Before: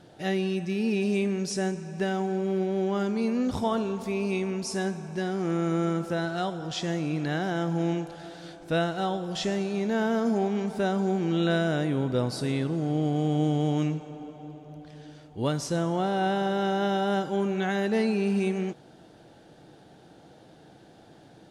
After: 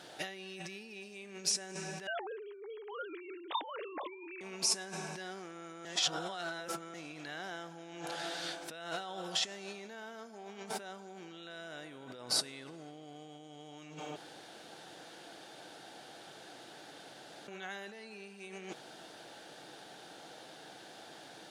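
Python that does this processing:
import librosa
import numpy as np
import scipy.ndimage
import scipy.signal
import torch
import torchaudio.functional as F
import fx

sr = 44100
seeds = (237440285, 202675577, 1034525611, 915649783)

y = fx.sine_speech(x, sr, at=(2.07, 4.41))
y = fx.edit(y, sr, fx.reverse_span(start_s=5.85, length_s=1.09),
    fx.room_tone_fill(start_s=14.16, length_s=3.32), tone=tone)
y = fx.over_compress(y, sr, threshold_db=-36.0, ratio=-1.0)
y = fx.highpass(y, sr, hz=1500.0, slope=6)
y = F.gain(torch.from_numpy(y), 2.0).numpy()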